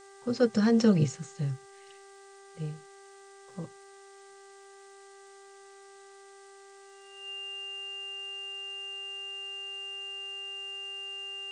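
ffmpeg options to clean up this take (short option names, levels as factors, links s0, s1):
-af "adeclick=t=4,bandreject=f=393.9:t=h:w=4,bandreject=f=787.8:t=h:w=4,bandreject=f=1181.7:t=h:w=4,bandreject=f=1575.6:t=h:w=4,bandreject=f=1969.5:t=h:w=4,bandreject=f=2800:w=30,afftdn=nr=26:nf=-52"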